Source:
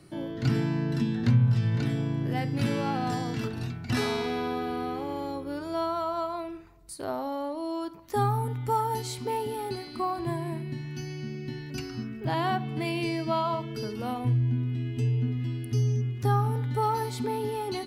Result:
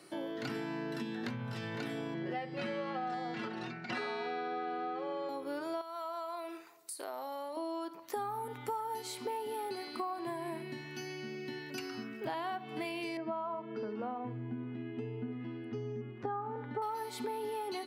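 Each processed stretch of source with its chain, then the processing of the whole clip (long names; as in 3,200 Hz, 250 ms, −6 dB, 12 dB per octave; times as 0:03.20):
0:02.14–0:05.29: high-frequency loss of the air 120 metres + comb filter 5.5 ms, depth 87%
0:05.81–0:07.57: high-pass filter 400 Hz 6 dB per octave + high-shelf EQ 4,600 Hz +9 dB + downward compressor 3 to 1, threshold −39 dBFS
0:13.17–0:16.82: low-pass filter 1,500 Hz + parametric band 210 Hz +7 dB 0.31 octaves
whole clip: high-pass filter 390 Hz 12 dB per octave; downward compressor, threshold −37 dBFS; dynamic equaliser 6,100 Hz, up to −5 dB, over −58 dBFS, Q 0.81; level +2 dB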